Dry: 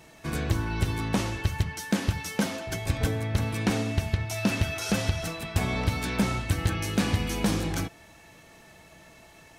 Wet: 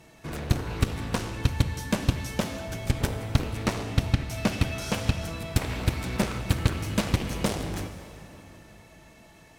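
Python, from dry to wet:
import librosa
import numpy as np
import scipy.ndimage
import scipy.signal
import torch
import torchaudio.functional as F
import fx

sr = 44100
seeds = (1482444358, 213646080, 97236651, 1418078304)

y = fx.low_shelf(x, sr, hz=360.0, db=4.5)
y = fx.cheby_harmonics(y, sr, harmonics=(3, 7), levels_db=(-8, -24), full_scale_db=-10.5)
y = fx.rev_plate(y, sr, seeds[0], rt60_s=3.4, hf_ratio=0.8, predelay_ms=0, drr_db=8.5)
y = F.gain(torch.from_numpy(y), 1.0).numpy()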